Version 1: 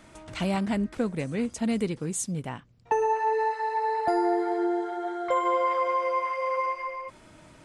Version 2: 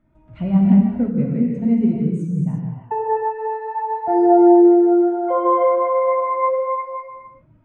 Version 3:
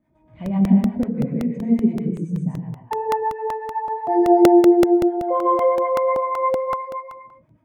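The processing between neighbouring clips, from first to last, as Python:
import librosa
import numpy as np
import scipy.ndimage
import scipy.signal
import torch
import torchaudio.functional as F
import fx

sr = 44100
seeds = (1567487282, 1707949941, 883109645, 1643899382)

y1 = fx.bass_treble(x, sr, bass_db=7, treble_db=-14)
y1 = fx.rev_gated(y1, sr, seeds[0], gate_ms=380, shape='flat', drr_db=-3.0)
y1 = fx.spectral_expand(y1, sr, expansion=1.5)
y1 = y1 * librosa.db_to_amplitude(4.0)
y2 = fx.harmonic_tremolo(y1, sr, hz=8.1, depth_pct=70, crossover_hz=690.0)
y2 = fx.notch_comb(y2, sr, f0_hz=1400.0)
y2 = fx.buffer_crackle(y2, sr, first_s=0.46, period_s=0.19, block=64, kind='repeat')
y2 = y2 * librosa.db_to_amplitude(2.0)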